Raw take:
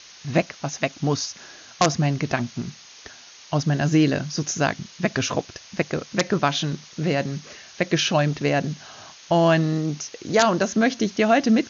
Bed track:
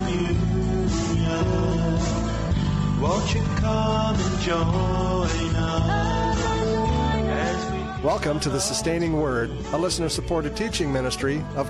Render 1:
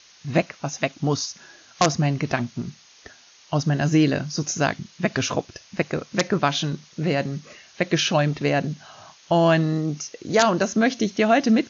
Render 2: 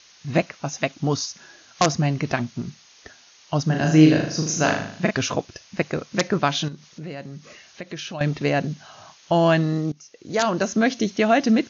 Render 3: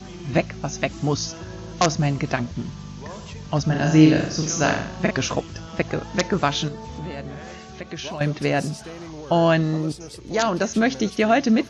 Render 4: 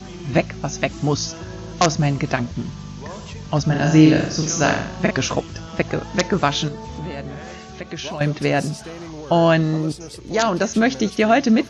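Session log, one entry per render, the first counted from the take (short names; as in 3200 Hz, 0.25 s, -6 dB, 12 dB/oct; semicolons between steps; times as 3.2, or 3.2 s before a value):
noise print and reduce 6 dB
3.66–5.11 flutter echo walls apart 6.6 m, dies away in 0.6 s; 6.68–8.21 compressor 2:1, threshold -39 dBFS; 9.92–10.71 fade in, from -20.5 dB
add bed track -14 dB
gain +2.5 dB; limiter -1 dBFS, peak gain reduction 1.5 dB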